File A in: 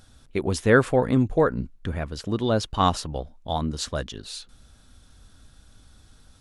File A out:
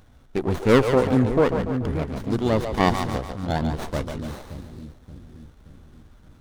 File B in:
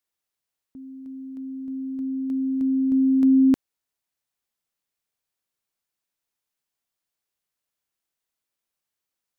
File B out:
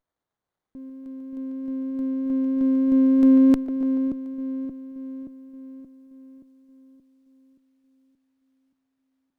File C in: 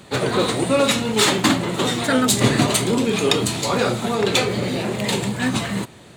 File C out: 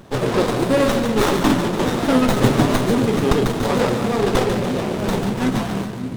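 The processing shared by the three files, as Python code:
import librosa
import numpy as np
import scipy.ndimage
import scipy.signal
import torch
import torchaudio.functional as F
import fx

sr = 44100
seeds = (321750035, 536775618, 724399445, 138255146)

y = fx.vibrato(x, sr, rate_hz=3.2, depth_cents=5.4)
y = fx.echo_split(y, sr, split_hz=340.0, low_ms=576, high_ms=144, feedback_pct=52, wet_db=-7.0)
y = fx.running_max(y, sr, window=17)
y = y * librosa.db_to_amplitude(1.5)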